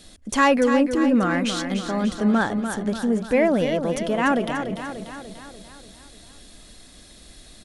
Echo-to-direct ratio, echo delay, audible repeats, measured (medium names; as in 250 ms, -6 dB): -6.5 dB, 293 ms, 6